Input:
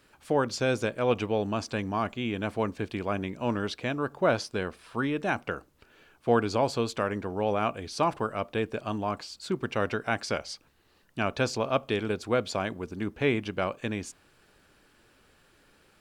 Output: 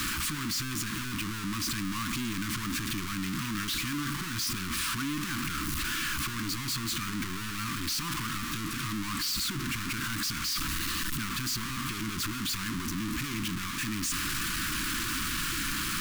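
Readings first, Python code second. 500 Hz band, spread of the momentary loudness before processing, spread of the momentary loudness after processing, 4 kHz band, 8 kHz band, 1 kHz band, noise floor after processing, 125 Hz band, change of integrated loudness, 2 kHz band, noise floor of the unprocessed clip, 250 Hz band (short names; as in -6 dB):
-22.0 dB, 8 LU, 3 LU, +7.5 dB, +12.5 dB, -5.5 dB, -35 dBFS, -1.0 dB, -1.5 dB, +1.5 dB, -63 dBFS, -2.0 dB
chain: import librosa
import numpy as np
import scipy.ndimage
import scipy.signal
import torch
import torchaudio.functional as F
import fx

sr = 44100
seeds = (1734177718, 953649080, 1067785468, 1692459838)

y = np.sign(x) * np.sqrt(np.mean(np.square(x)))
y = scipy.signal.sosfilt(scipy.signal.cheby1(3, 1.0, [310.0, 1100.0], 'bandstop', fs=sr, output='sos'), y)
y = fx.peak_eq(y, sr, hz=94.0, db=-7.0, octaves=0.31)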